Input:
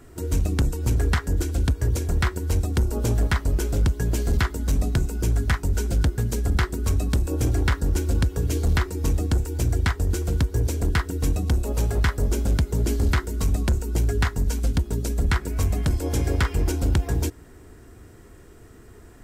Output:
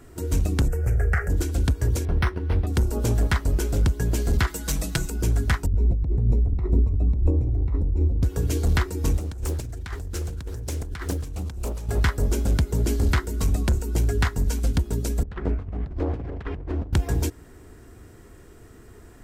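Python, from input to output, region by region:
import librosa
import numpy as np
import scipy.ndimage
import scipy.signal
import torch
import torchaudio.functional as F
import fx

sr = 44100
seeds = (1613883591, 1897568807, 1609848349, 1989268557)

y = fx.chain(x, sr, fx.high_shelf_res(hz=2500.0, db=-8.5, q=1.5),
    fx.fixed_phaser(hz=1000.0, stages=6),
    fx.env_flatten(amount_pct=50), at=(0.68, 1.3))
y = fx.chain(y, sr, fx.lowpass(hz=7700.0, slope=24),
    fx.resample_linear(factor=6), at=(2.05, 2.67))
y = fx.chain(y, sr, fx.tilt_shelf(db=-5.5, hz=930.0),
    fx.comb(ms=6.1, depth=0.73), at=(4.47, 5.1))
y = fx.chain(y, sr, fx.over_compress(threshold_db=-28.0, ratio=-1.0),
    fx.moving_average(points=28),
    fx.low_shelf(hz=140.0, db=10.0), at=(5.66, 8.23))
y = fx.chain(y, sr, fx.peak_eq(hz=310.0, db=-4.0, octaves=2.2),
    fx.over_compress(threshold_db=-30.0, ratio=-1.0),
    fx.doppler_dist(depth_ms=0.8), at=(9.18, 11.89))
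y = fx.chain(y, sr, fx.self_delay(depth_ms=0.38),
    fx.bessel_lowpass(hz=1400.0, order=2),
    fx.over_compress(threshold_db=-27.0, ratio=-0.5), at=(15.23, 16.93))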